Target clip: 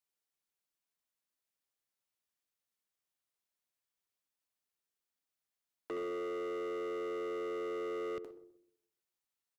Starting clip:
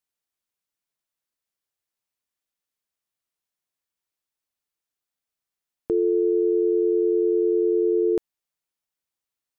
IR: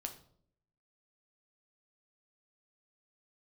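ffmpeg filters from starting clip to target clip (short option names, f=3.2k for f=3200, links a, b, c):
-filter_complex "[0:a]acrossover=split=150|560[a][b][c];[a]acompressor=threshold=-59dB:ratio=4[d];[b]acompressor=threshold=-29dB:ratio=4[e];[c]acompressor=threshold=-35dB:ratio=4[f];[d][e][f]amix=inputs=3:normalize=0,asplit=2[g][h];[1:a]atrim=start_sample=2205,adelay=68[i];[h][i]afir=irnorm=-1:irlink=0,volume=-8dB[j];[g][j]amix=inputs=2:normalize=0,asoftclip=type=hard:threshold=-32dB,lowshelf=f=130:g=-4.5,asplit=2[k][l];[l]adelay=128,lowpass=f=820:p=1,volume=-14dB,asplit=2[m][n];[n]adelay=128,lowpass=f=820:p=1,volume=0.38,asplit=2[o][p];[p]adelay=128,lowpass=f=820:p=1,volume=0.38,asplit=2[q][r];[r]adelay=128,lowpass=f=820:p=1,volume=0.38[s];[k][m][o][q][s]amix=inputs=5:normalize=0,volume=-4dB"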